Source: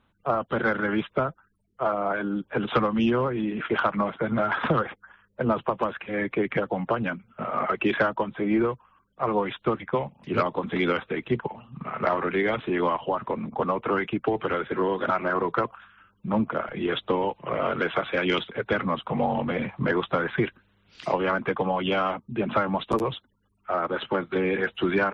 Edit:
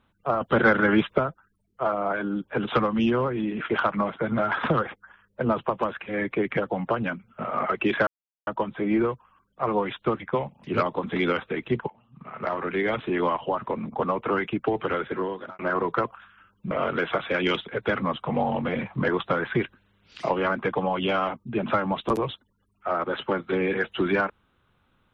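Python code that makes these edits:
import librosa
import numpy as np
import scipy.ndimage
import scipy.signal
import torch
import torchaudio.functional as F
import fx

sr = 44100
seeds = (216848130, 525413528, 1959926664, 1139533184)

y = fx.edit(x, sr, fx.clip_gain(start_s=0.41, length_s=0.77, db=5.5),
    fx.insert_silence(at_s=8.07, length_s=0.4),
    fx.fade_in_from(start_s=11.5, length_s=1.06, floor_db=-19.0),
    fx.fade_out_span(start_s=14.65, length_s=0.54),
    fx.cut(start_s=16.31, length_s=1.23), tone=tone)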